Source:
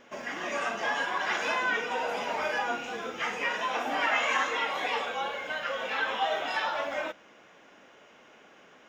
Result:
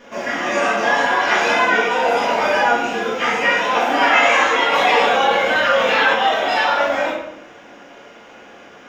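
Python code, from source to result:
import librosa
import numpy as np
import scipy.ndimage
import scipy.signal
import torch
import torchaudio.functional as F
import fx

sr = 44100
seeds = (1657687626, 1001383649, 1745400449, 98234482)

y = fx.room_shoebox(x, sr, seeds[0], volume_m3=170.0, walls='mixed', distance_m=1.8)
y = fx.env_flatten(y, sr, amount_pct=50, at=(4.72, 6.13), fade=0.02)
y = y * librosa.db_to_amplitude(6.5)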